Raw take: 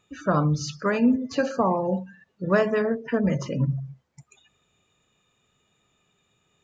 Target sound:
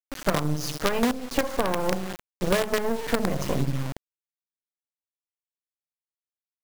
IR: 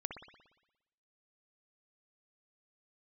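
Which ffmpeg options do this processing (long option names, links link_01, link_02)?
-filter_complex "[0:a]adynamicequalizer=threshold=0.0158:dfrequency=480:dqfactor=1.5:tfrequency=480:tqfactor=1.5:attack=5:release=100:ratio=0.375:range=2.5:mode=boostabove:tftype=bell,asplit=2[link_01][link_02];[1:a]atrim=start_sample=2205,asetrate=48510,aresample=44100[link_03];[link_02][link_03]afir=irnorm=-1:irlink=0,volume=-6dB[link_04];[link_01][link_04]amix=inputs=2:normalize=0,acrusher=bits=3:dc=4:mix=0:aa=0.000001,acompressor=threshold=-23dB:ratio=10,volume=4dB"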